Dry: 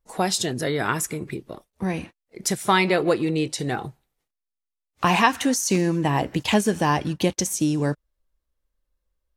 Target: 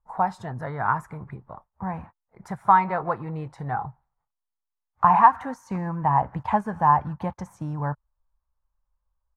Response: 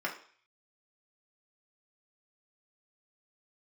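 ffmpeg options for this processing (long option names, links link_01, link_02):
-af "firequalizer=gain_entry='entry(120,0);entry(330,-18);entry(880,8);entry(2800,-25);entry(5900,-30)':delay=0.05:min_phase=1"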